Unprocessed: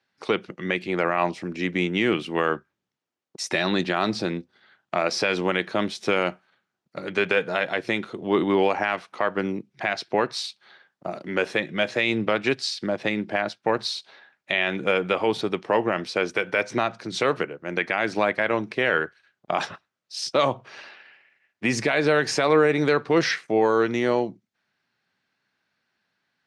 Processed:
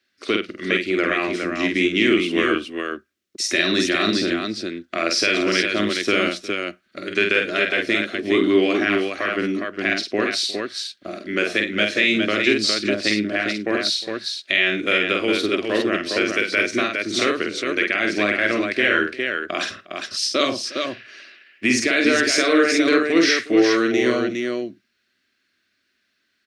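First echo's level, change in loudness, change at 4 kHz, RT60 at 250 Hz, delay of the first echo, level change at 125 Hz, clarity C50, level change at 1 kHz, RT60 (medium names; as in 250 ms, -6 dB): -4.0 dB, +4.5 dB, +8.5 dB, no reverb, 48 ms, -2.5 dB, no reverb, -1.5 dB, no reverb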